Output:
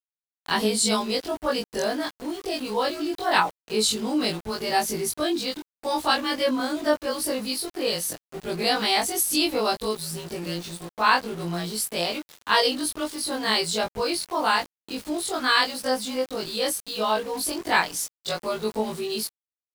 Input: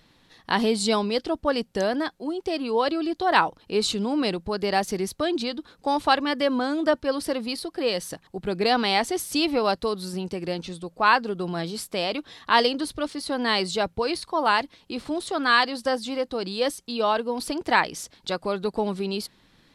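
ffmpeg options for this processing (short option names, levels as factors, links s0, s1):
-af "afftfilt=real='re':imag='-im':win_size=2048:overlap=0.75,aemphasis=mode=production:type=50fm,aeval=exprs='val(0)*gte(abs(val(0)),0.01)':c=same,volume=1.41"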